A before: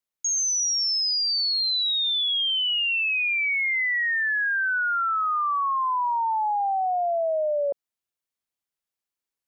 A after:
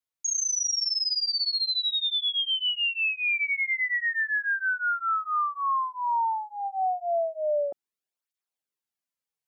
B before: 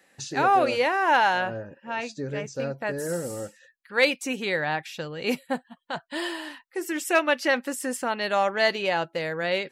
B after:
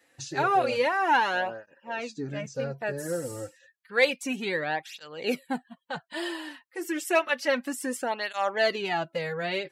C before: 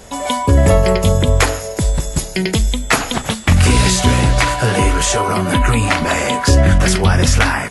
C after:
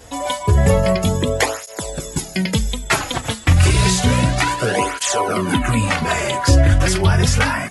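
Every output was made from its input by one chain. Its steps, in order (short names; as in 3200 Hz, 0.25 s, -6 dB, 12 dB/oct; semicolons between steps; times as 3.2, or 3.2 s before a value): tape flanging out of phase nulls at 0.3 Hz, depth 5.3 ms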